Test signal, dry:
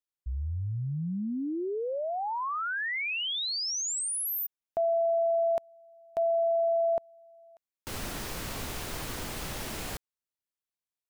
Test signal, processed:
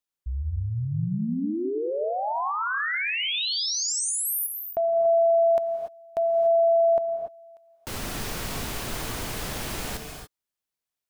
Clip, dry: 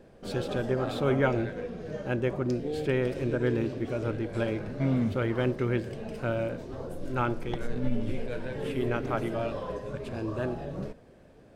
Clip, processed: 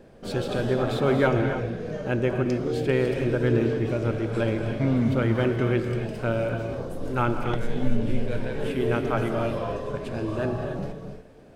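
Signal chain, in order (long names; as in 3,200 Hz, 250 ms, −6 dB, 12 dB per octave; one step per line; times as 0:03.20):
reverb whose tail is shaped and stops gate 310 ms rising, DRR 5.5 dB
level +3.5 dB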